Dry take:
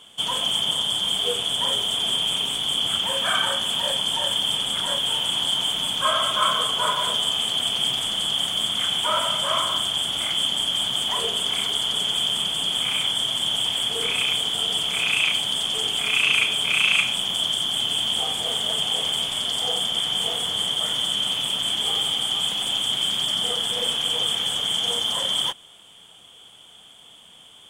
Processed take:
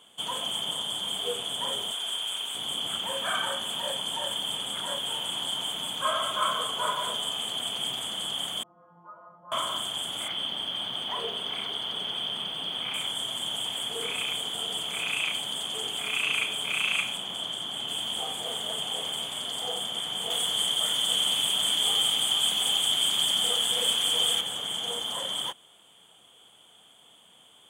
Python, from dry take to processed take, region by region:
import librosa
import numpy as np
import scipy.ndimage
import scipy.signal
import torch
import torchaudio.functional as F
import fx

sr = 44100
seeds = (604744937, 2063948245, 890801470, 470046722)

y = fx.chain(x, sr, fx.highpass(hz=960.0, slope=6),
    fx.peak_eq(hz=1500.0, db=4.0, octaves=0.2), at=(1.92, 2.55))
y = fx.chain(y, sr, fx.ellip_lowpass(hz=1200.0, order=4, stop_db=80),
    fx.stiff_resonator(f0_hz=170.0, decay_s=0.41, stiffness=0.002), at=(8.63, 9.52))
y = fx.chain(y, sr, fx.savgol(points=15),
    fx.quant_dither(seeds[0], bits=10, dither='triangular'), at=(10.28, 12.94))
y = fx.chain(y, sr, fx.highpass(hz=63.0, slope=12),
    fx.high_shelf(hz=6300.0, db=-8.5), at=(17.17, 17.88))
y = fx.chain(y, sr, fx.high_shelf(hz=2000.0, db=8.0),
    fx.echo_single(ms=784, db=-5.5), at=(20.3, 24.41))
y = fx.highpass(y, sr, hz=200.0, slope=6)
y = fx.peak_eq(y, sr, hz=3700.0, db=-5.0, octaves=2.3)
y = fx.notch(y, sr, hz=5400.0, q=5.6)
y = y * 10.0 ** (-3.5 / 20.0)